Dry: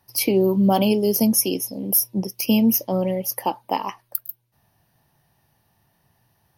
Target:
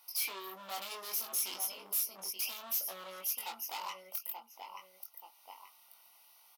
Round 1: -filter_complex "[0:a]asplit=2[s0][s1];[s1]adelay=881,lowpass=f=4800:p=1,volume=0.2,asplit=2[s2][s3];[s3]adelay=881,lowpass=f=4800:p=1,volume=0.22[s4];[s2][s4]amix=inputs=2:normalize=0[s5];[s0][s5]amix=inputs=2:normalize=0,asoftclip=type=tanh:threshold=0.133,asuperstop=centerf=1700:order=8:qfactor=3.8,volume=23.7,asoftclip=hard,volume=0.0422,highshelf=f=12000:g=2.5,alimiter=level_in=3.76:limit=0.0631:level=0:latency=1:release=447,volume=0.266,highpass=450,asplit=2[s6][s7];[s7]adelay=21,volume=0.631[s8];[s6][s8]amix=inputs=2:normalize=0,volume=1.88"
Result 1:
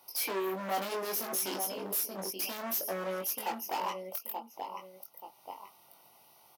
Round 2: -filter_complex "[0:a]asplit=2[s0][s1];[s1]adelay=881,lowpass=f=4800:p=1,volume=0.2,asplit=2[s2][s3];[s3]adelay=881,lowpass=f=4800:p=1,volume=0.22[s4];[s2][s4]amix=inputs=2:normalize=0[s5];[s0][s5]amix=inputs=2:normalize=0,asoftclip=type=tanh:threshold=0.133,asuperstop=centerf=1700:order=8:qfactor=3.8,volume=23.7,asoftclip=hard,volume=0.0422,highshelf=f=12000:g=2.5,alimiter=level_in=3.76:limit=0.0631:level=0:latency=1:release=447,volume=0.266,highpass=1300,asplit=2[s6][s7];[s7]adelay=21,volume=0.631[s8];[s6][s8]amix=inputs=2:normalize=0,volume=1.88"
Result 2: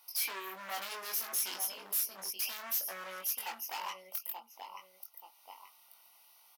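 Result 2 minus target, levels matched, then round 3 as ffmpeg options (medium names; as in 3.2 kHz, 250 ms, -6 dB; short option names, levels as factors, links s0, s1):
saturation: distortion -7 dB
-filter_complex "[0:a]asplit=2[s0][s1];[s1]adelay=881,lowpass=f=4800:p=1,volume=0.2,asplit=2[s2][s3];[s3]adelay=881,lowpass=f=4800:p=1,volume=0.22[s4];[s2][s4]amix=inputs=2:normalize=0[s5];[s0][s5]amix=inputs=2:normalize=0,asoftclip=type=tanh:threshold=0.0447,asuperstop=centerf=1700:order=8:qfactor=3.8,volume=23.7,asoftclip=hard,volume=0.0422,highshelf=f=12000:g=2.5,alimiter=level_in=3.76:limit=0.0631:level=0:latency=1:release=447,volume=0.266,highpass=1300,asplit=2[s6][s7];[s7]adelay=21,volume=0.631[s8];[s6][s8]amix=inputs=2:normalize=0,volume=1.88"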